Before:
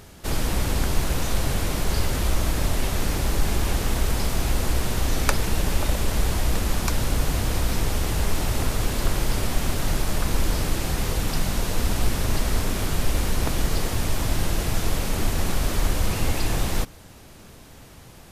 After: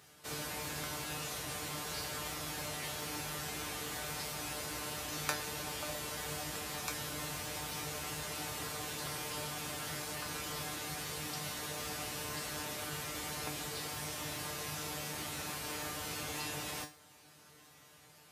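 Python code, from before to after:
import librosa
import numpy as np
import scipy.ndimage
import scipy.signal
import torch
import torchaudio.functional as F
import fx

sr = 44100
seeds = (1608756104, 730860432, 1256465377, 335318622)

y = scipy.signal.sosfilt(scipy.signal.butter(4, 71.0, 'highpass', fs=sr, output='sos'), x)
y = fx.low_shelf(y, sr, hz=440.0, db=-10.5)
y = fx.comb_fb(y, sr, f0_hz=150.0, decay_s=0.28, harmonics='all', damping=0.0, mix_pct=90)
y = y * librosa.db_to_amplitude(1.0)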